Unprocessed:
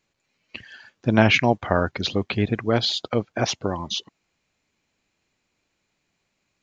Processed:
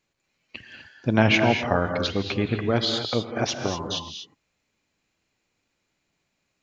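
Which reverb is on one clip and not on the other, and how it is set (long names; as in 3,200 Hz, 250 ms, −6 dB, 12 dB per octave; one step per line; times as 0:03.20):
reverb whose tail is shaped and stops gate 270 ms rising, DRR 5 dB
level −2.5 dB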